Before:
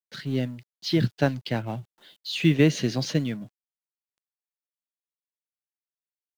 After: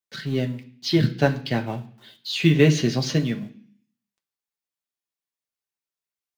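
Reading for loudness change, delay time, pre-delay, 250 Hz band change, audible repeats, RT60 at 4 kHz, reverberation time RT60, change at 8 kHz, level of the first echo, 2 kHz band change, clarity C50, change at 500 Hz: +3.0 dB, none, 3 ms, +2.5 dB, none, 0.60 s, 0.55 s, +4.0 dB, none, +4.0 dB, 14.0 dB, +4.0 dB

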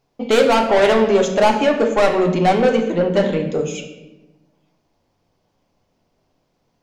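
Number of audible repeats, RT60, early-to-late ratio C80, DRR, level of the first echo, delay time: none, 1.0 s, 9.5 dB, 3.0 dB, none, none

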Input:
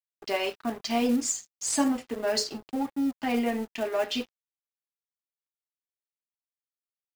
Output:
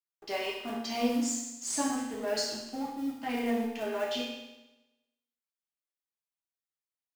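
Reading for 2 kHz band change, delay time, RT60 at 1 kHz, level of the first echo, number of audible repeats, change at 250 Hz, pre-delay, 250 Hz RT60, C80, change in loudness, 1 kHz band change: -3.0 dB, none, 1.0 s, none, none, -4.5 dB, 8 ms, 1.0 s, 5.5 dB, -4.0 dB, -3.5 dB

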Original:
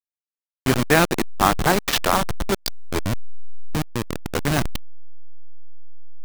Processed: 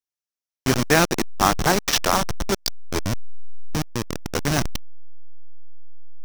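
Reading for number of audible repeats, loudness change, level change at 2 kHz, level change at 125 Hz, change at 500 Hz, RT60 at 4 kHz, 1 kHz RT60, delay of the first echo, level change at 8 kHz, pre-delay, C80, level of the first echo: none, -0.5 dB, -1.0 dB, -1.0 dB, -1.0 dB, none, none, none, +3.5 dB, none, none, none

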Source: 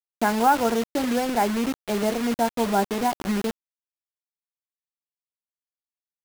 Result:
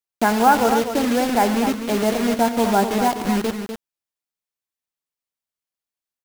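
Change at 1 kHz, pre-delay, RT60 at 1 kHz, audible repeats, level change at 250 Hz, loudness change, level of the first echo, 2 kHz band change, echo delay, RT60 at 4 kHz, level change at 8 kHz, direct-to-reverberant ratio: +4.5 dB, none, none, 3, +5.0 dB, +5.0 dB, -16.5 dB, +5.0 dB, 86 ms, none, +5.0 dB, none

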